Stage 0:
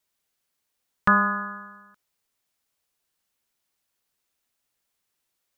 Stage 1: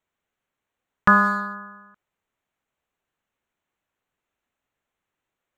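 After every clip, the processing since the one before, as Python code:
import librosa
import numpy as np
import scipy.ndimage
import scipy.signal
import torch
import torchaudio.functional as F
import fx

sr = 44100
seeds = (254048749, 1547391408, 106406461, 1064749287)

y = fx.wiener(x, sr, points=9)
y = y * 10.0 ** (3.5 / 20.0)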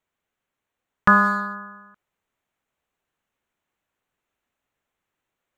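y = fx.rider(x, sr, range_db=10, speed_s=0.5)
y = y * 10.0 ** (2.5 / 20.0)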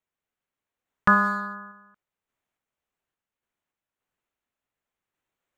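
y = fx.tremolo_random(x, sr, seeds[0], hz=3.5, depth_pct=55)
y = y * 10.0 ** (-3.0 / 20.0)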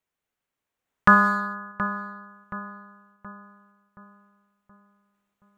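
y = fx.echo_filtered(x, sr, ms=724, feedback_pct=49, hz=1700.0, wet_db=-10.5)
y = y * 10.0 ** (3.0 / 20.0)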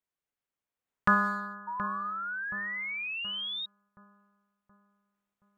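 y = fx.spec_paint(x, sr, seeds[1], shape='rise', start_s=1.67, length_s=1.99, low_hz=930.0, high_hz=3800.0, level_db=-27.0)
y = y * 10.0 ** (-8.5 / 20.0)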